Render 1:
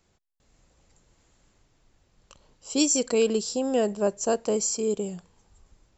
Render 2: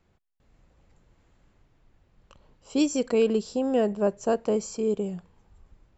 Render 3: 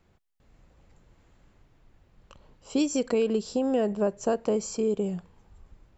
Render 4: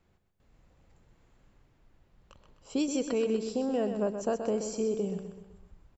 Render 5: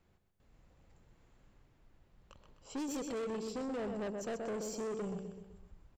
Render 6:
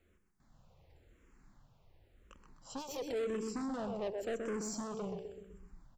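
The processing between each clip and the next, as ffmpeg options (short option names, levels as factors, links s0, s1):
-af "bass=f=250:g=3,treble=f=4000:g=-14"
-af "acompressor=threshold=0.0562:ratio=3,volume=1.33"
-af "aecho=1:1:127|254|381|508|635:0.398|0.183|0.0842|0.0388|0.0178,volume=0.596"
-af "asoftclip=type=tanh:threshold=0.0211,volume=0.794"
-filter_complex "[0:a]asplit=2[s0][s1];[s1]afreqshift=-0.93[s2];[s0][s2]amix=inputs=2:normalize=1,volume=1.5"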